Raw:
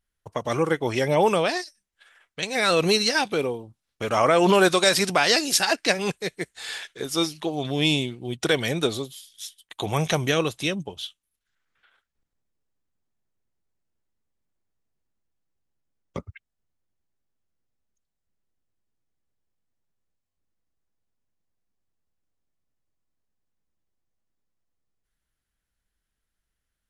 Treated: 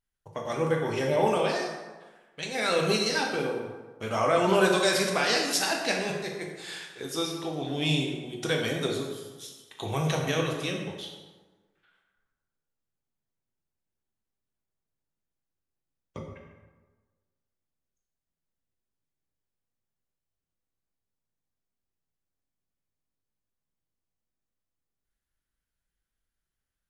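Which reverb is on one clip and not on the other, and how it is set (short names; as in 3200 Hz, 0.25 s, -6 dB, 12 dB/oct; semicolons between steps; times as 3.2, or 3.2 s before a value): plate-style reverb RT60 1.3 s, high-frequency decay 0.6×, DRR -0.5 dB; gain -8 dB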